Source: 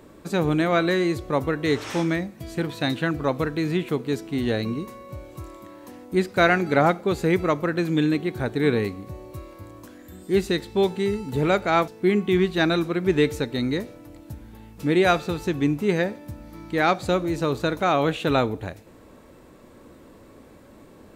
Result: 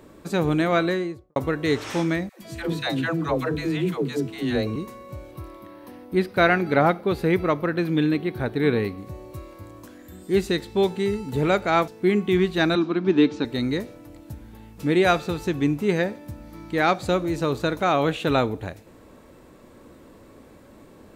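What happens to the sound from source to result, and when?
0.76–1.36 s: studio fade out
2.29–4.76 s: phase dispersion lows, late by 127 ms, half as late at 450 Hz
5.31–8.98 s: peaking EQ 7.2 kHz -14 dB 0.48 oct
12.75–13.45 s: cabinet simulation 200–5200 Hz, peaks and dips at 210 Hz +7 dB, 300 Hz +7 dB, 510 Hz -8 dB, 1 kHz +3 dB, 2 kHz -7 dB

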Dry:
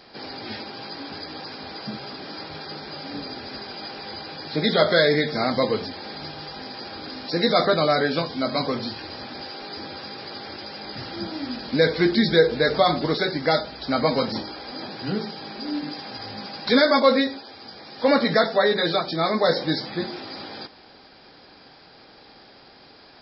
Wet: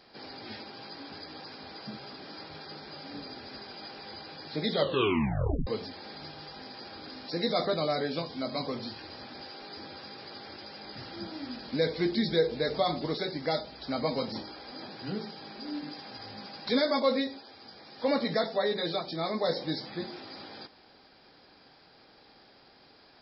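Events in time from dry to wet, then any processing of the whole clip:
4.77 s: tape stop 0.90 s
whole clip: dynamic bell 1.5 kHz, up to -7 dB, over -39 dBFS, Q 2.2; trim -8.5 dB

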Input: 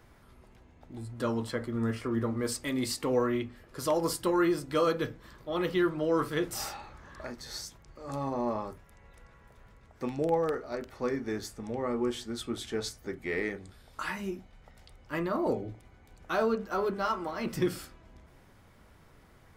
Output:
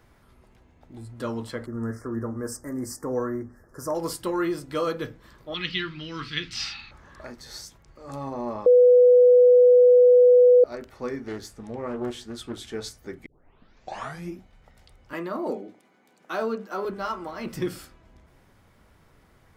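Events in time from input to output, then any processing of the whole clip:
1.66–3.95 s: elliptic band-stop 1.7–5.5 kHz, stop band 50 dB
5.54–6.91 s: FFT filter 230 Hz 0 dB, 580 Hz -21 dB, 2.6 kHz +13 dB, 4.6 kHz +12 dB, 11 kHz -23 dB
8.66–10.64 s: bleep 494 Hz -11 dBFS
11.26–12.63 s: loudspeaker Doppler distortion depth 0.33 ms
13.26 s: tape start 1.12 s
15.13–16.85 s: steep high-pass 180 Hz

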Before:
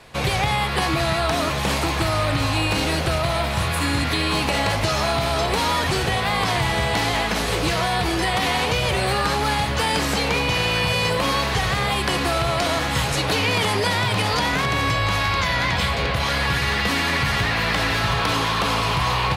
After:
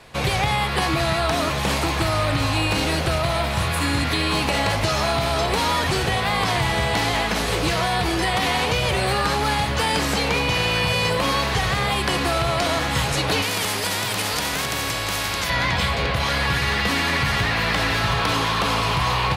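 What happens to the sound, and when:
13.42–15.50 s: spectrum-flattening compressor 2:1

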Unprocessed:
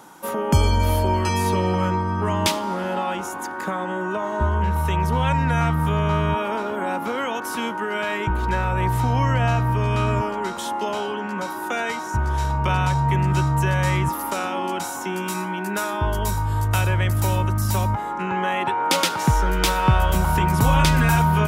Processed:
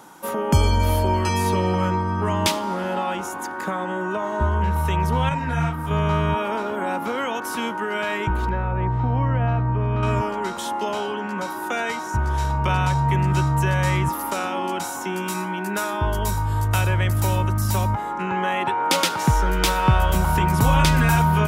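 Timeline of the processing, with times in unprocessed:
5.29–5.91 s: detune thickener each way 34 cents
8.49–10.03 s: tape spacing loss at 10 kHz 40 dB

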